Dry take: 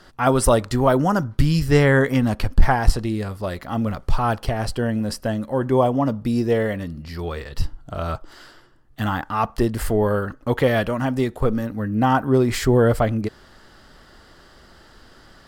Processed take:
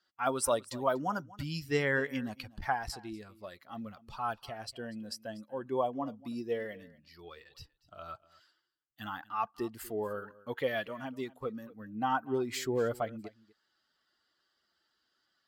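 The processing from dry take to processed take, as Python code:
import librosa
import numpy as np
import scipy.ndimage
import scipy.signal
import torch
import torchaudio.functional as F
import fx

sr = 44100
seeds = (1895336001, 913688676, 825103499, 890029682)

y = fx.bin_expand(x, sr, power=1.5)
y = fx.highpass(y, sr, hz=530.0, slope=6)
y = y + 10.0 ** (-20.5 / 20.0) * np.pad(y, (int(241 * sr / 1000.0), 0))[:len(y)]
y = y * 10.0 ** (-7.5 / 20.0)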